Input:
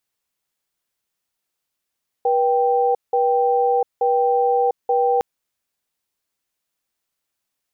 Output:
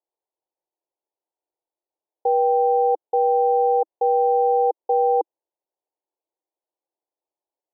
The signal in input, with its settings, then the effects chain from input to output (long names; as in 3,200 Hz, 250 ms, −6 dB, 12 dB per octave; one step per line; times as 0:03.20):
tone pair in a cadence 484 Hz, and 784 Hz, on 0.70 s, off 0.18 s, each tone −17.5 dBFS 2.96 s
elliptic band-pass filter 320–920 Hz